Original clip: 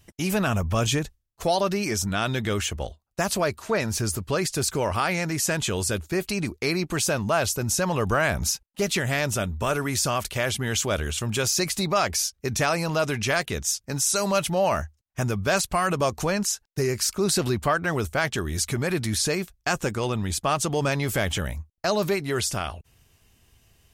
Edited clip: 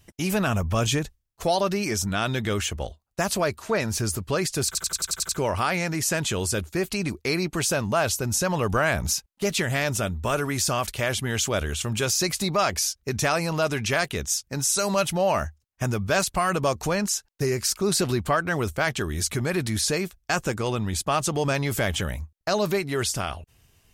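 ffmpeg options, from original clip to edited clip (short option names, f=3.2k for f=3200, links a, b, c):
-filter_complex "[0:a]asplit=8[a][b][c][d][e][f][g][h];[a]atrim=end=4.752[i];[b]atrim=start=4.658:end=4.752[j];[c]atrim=start=4.658:end=4.752[k];[d]atrim=start=4.658:end=4.752[l];[e]atrim=start=4.658:end=4.752[m];[f]atrim=start=4.658:end=4.752[n];[g]atrim=start=4.658:end=4.752[o];[h]atrim=start=4.658[p];[i][j]acrossfade=d=0.004:c1=hsin:c2=hsin[q];[q][k]acrossfade=d=0.004:c1=hsin:c2=hsin[r];[r][l]acrossfade=d=0.004:c1=hsin:c2=hsin[s];[s][m]acrossfade=d=0.004:c1=hsin:c2=hsin[t];[t][n]acrossfade=d=0.004:c1=hsin:c2=hsin[u];[u][o]acrossfade=d=0.004:c1=hsin:c2=hsin[v];[v][p]acrossfade=d=0.004:c1=hsin:c2=hsin"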